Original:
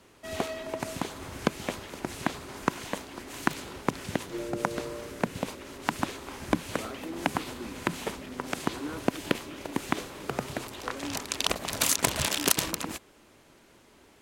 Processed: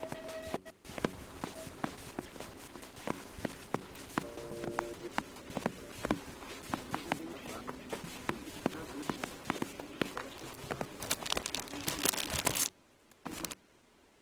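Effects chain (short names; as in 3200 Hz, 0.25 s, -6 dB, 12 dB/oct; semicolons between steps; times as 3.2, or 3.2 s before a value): slices in reverse order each 0.141 s, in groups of 6; de-hum 93.65 Hz, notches 4; gain -6.5 dB; Opus 20 kbps 48000 Hz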